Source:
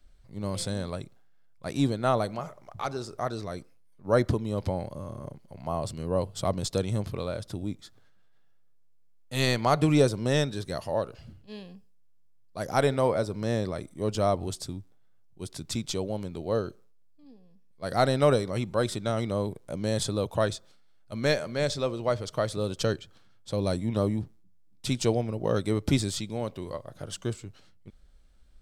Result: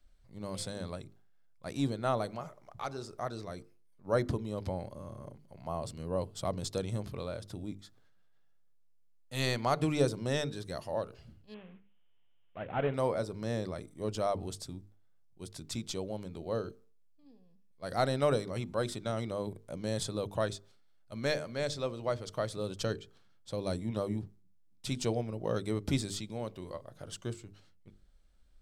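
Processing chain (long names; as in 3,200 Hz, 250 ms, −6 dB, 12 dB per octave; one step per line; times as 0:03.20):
0:11.54–0:12.94: variable-slope delta modulation 16 kbit/s
mains-hum notches 50/100/150/200/250/300/350/400/450 Hz
level −6 dB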